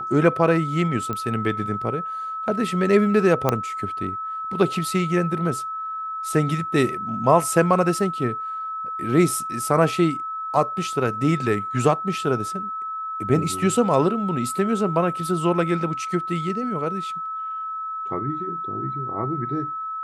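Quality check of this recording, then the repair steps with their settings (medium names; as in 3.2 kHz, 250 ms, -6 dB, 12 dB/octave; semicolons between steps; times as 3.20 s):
whine 1.3 kHz -27 dBFS
1.13 s: pop -15 dBFS
3.49 s: pop -6 dBFS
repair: de-click; band-stop 1.3 kHz, Q 30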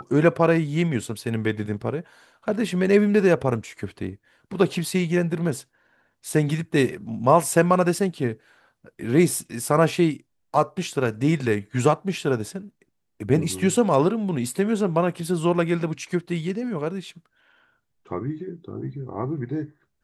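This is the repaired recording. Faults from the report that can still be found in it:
nothing left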